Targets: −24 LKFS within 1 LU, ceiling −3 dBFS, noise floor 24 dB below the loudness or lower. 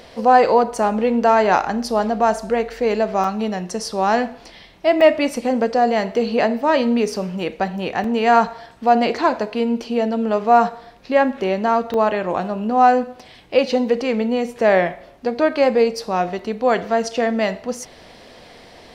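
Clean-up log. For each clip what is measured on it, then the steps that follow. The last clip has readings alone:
number of dropouts 6; longest dropout 2.7 ms; integrated loudness −19.0 LKFS; sample peak −2.0 dBFS; target loudness −24.0 LKFS
→ repair the gap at 0:03.24/0:05.01/0:08.04/0:11.94/0:16.39/0:18.27, 2.7 ms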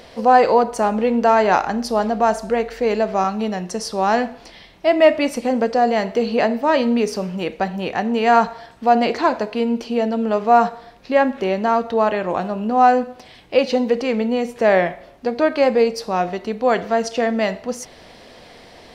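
number of dropouts 0; integrated loudness −19.0 LKFS; sample peak −2.0 dBFS; target loudness −24.0 LKFS
→ level −5 dB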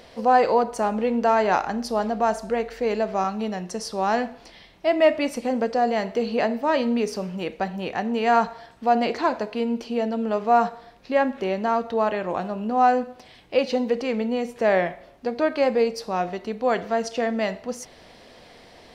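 integrated loudness −24.0 LKFS; sample peak −7.0 dBFS; background noise floor −50 dBFS

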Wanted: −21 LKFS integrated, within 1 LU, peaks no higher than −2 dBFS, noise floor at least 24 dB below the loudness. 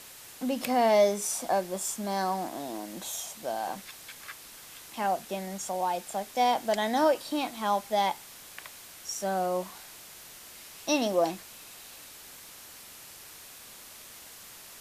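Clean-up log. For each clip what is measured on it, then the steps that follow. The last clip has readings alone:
background noise floor −49 dBFS; target noise floor −54 dBFS; integrated loudness −29.5 LKFS; sample peak −12.5 dBFS; target loudness −21.0 LKFS
→ broadband denoise 6 dB, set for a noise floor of −49 dBFS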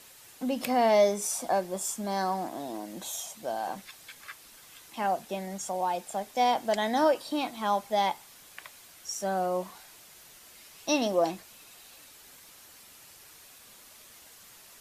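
background noise floor −53 dBFS; target noise floor −54 dBFS
→ broadband denoise 6 dB, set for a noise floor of −53 dBFS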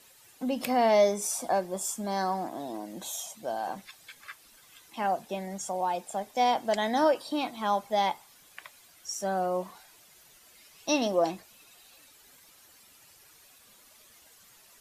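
background noise floor −58 dBFS; integrated loudness −29.5 LKFS; sample peak −12.5 dBFS; target loudness −21.0 LKFS
→ level +8.5 dB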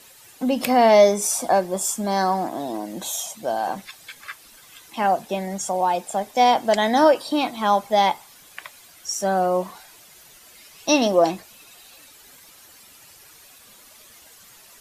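integrated loudness −21.0 LKFS; sample peak −4.0 dBFS; background noise floor −49 dBFS

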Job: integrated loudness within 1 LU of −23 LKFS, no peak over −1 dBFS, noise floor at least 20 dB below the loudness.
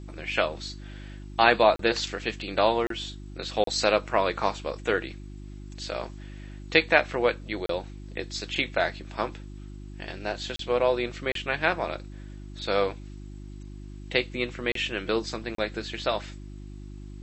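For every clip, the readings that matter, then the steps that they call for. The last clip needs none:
number of dropouts 8; longest dropout 33 ms; mains hum 50 Hz; hum harmonics up to 350 Hz; level of the hum −38 dBFS; integrated loudness −27.0 LKFS; sample peak −2.0 dBFS; target loudness −23.0 LKFS
→ repair the gap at 0:01.76/0:02.87/0:03.64/0:07.66/0:10.56/0:11.32/0:14.72/0:15.55, 33 ms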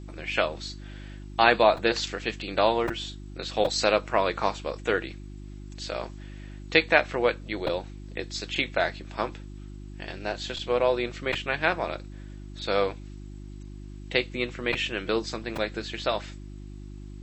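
number of dropouts 0; mains hum 50 Hz; hum harmonics up to 350 Hz; level of the hum −39 dBFS
→ hum removal 50 Hz, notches 7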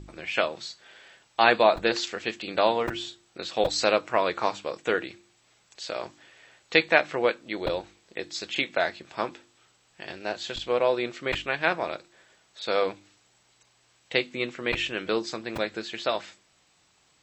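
mains hum none found; integrated loudness −27.0 LKFS; sample peak −2.0 dBFS; target loudness −23.0 LKFS
→ level +4 dB
brickwall limiter −1 dBFS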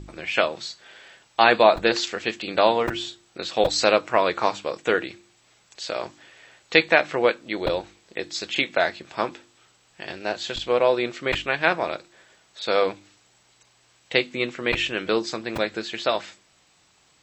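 integrated loudness −23.5 LKFS; sample peak −1.0 dBFS; background noise floor −61 dBFS

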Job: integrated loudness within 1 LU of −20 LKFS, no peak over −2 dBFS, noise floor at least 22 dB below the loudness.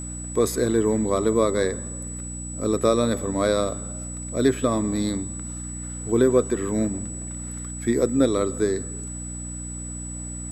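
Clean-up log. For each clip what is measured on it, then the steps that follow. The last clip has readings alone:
mains hum 60 Hz; hum harmonics up to 300 Hz; level of the hum −32 dBFS; interfering tone 7,900 Hz; level of the tone −35 dBFS; integrated loudness −24.5 LKFS; sample peak −7.0 dBFS; target loudness −20.0 LKFS
→ hum removal 60 Hz, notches 5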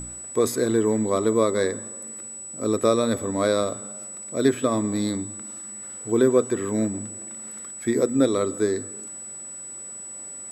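mains hum none found; interfering tone 7,900 Hz; level of the tone −35 dBFS
→ notch filter 7,900 Hz, Q 30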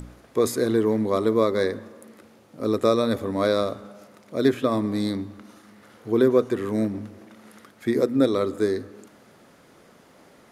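interfering tone none found; integrated loudness −23.5 LKFS; sample peak −6.5 dBFS; target loudness −20.0 LKFS
→ level +3.5 dB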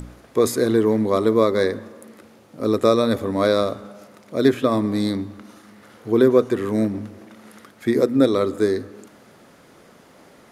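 integrated loudness −20.0 LKFS; sample peak −3.0 dBFS; background noise floor −51 dBFS

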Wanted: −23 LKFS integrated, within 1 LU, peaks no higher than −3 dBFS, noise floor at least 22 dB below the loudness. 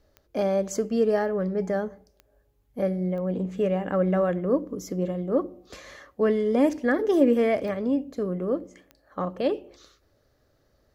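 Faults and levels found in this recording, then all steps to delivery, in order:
number of clicks 5; integrated loudness −26.0 LKFS; sample peak −8.5 dBFS; target loudness −23.0 LKFS
→ click removal
level +3 dB

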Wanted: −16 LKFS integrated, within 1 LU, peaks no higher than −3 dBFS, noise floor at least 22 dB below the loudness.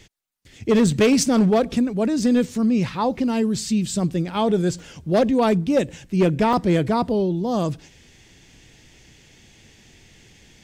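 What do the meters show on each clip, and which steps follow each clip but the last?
share of clipped samples 0.9%; peaks flattened at −11.5 dBFS; number of dropouts 2; longest dropout 2.0 ms; integrated loudness −20.5 LKFS; sample peak −11.5 dBFS; target loudness −16.0 LKFS
→ clipped peaks rebuilt −11.5 dBFS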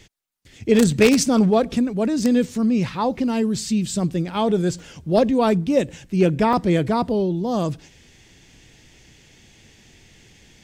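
share of clipped samples 0.0%; number of dropouts 2; longest dropout 2.0 ms
→ repair the gap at 0:04.79/0:06.53, 2 ms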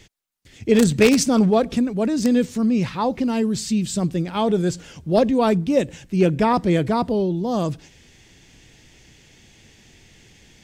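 number of dropouts 0; integrated loudness −20.0 LKFS; sample peak −2.5 dBFS; target loudness −16.0 LKFS
→ level +4 dB
brickwall limiter −3 dBFS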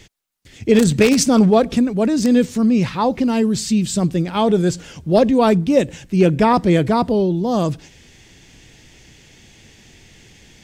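integrated loudness −16.5 LKFS; sample peak −3.0 dBFS; background noise floor −48 dBFS

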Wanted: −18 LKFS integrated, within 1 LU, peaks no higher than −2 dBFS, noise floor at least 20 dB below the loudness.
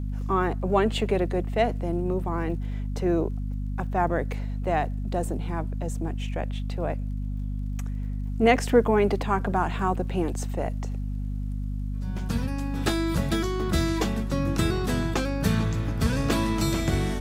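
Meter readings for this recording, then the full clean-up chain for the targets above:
crackle rate 34 per second; mains hum 50 Hz; hum harmonics up to 250 Hz; level of the hum −27 dBFS; integrated loudness −27.0 LKFS; sample peak −6.5 dBFS; target loudness −18.0 LKFS
→ click removal
hum removal 50 Hz, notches 5
level +9 dB
brickwall limiter −2 dBFS

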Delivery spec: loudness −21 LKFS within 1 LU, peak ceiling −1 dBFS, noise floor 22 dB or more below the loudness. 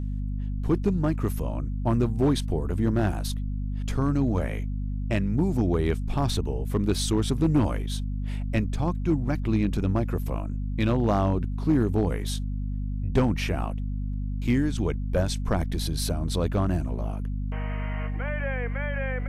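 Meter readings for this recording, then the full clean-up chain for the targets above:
share of clipped samples 0.4%; peaks flattened at −14.5 dBFS; mains hum 50 Hz; hum harmonics up to 250 Hz; level of the hum −27 dBFS; integrated loudness −27.0 LKFS; sample peak −14.5 dBFS; target loudness −21.0 LKFS
→ clipped peaks rebuilt −14.5 dBFS
hum removal 50 Hz, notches 5
level +6 dB

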